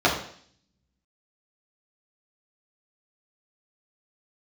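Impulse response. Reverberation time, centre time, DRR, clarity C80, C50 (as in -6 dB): 0.55 s, 30 ms, -6.0 dB, 10.0 dB, 6.5 dB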